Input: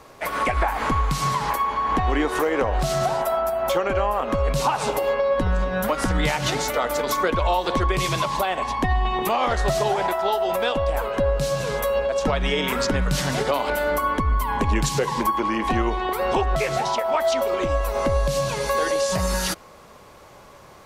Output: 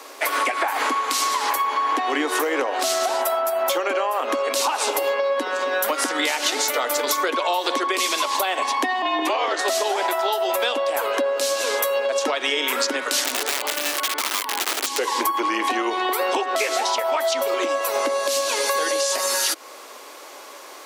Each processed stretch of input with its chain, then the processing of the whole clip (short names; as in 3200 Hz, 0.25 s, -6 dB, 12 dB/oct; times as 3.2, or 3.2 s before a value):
9.02–9.59 frequency shift -54 Hz + air absorption 85 m
13.24–14.98 high shelf 4200 Hz -9.5 dB + wrapped overs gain 17.5 dB + core saturation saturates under 82 Hz
whole clip: steep high-pass 260 Hz 72 dB/oct; high shelf 2000 Hz +9.5 dB; compressor, threshold -23 dBFS; gain +4 dB